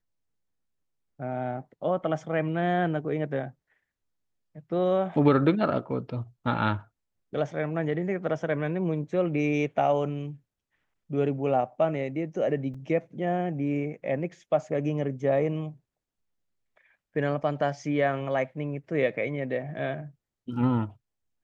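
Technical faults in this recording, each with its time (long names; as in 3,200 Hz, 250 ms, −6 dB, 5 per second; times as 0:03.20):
0:12.74: drop-out 4.7 ms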